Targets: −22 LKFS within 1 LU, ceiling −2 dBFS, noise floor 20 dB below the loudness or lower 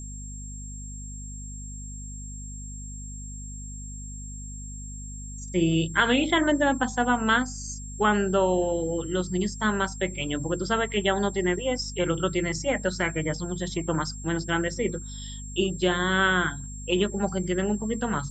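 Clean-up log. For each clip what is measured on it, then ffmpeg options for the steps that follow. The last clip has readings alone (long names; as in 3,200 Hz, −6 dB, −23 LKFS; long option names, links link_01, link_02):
mains hum 50 Hz; hum harmonics up to 250 Hz; level of the hum −36 dBFS; interfering tone 7,500 Hz; level of the tone −41 dBFS; integrated loudness −26.0 LKFS; sample peak −7.5 dBFS; target loudness −22.0 LKFS
→ -af "bandreject=frequency=50:width_type=h:width=6,bandreject=frequency=100:width_type=h:width=6,bandreject=frequency=150:width_type=h:width=6,bandreject=frequency=200:width_type=h:width=6,bandreject=frequency=250:width_type=h:width=6"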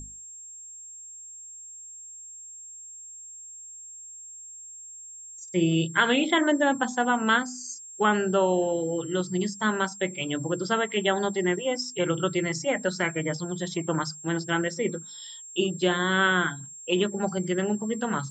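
mains hum none found; interfering tone 7,500 Hz; level of the tone −41 dBFS
→ -af "bandreject=frequency=7500:width=30"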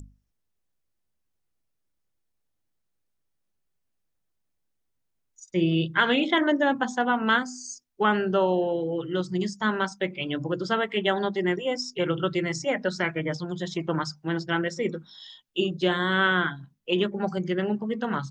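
interfering tone none found; integrated loudness −26.0 LKFS; sample peak −7.5 dBFS; target loudness −22.0 LKFS
→ -af "volume=4dB"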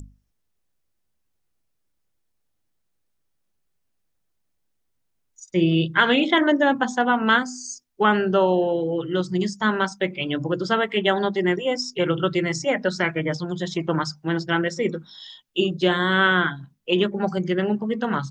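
integrated loudness −22.0 LKFS; sample peak −3.5 dBFS; background noise floor −73 dBFS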